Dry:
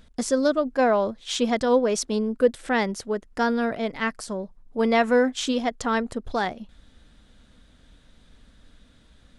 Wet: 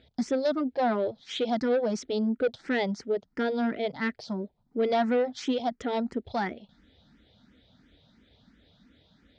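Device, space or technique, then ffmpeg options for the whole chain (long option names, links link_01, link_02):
barber-pole phaser into a guitar amplifier: -filter_complex "[0:a]asplit=2[link_01][link_02];[link_02]afreqshift=2.9[link_03];[link_01][link_03]amix=inputs=2:normalize=1,asoftclip=type=tanh:threshold=-20dB,highpass=100,equalizer=frequency=520:width_type=q:width=4:gain=-3,equalizer=frequency=1100:width_type=q:width=4:gain=-10,equalizer=frequency=1600:width_type=q:width=4:gain=-5,equalizer=frequency=2700:width_type=q:width=4:gain=-6,lowpass=frequency=4600:width=0.5412,lowpass=frequency=4600:width=1.3066,volume=2.5dB"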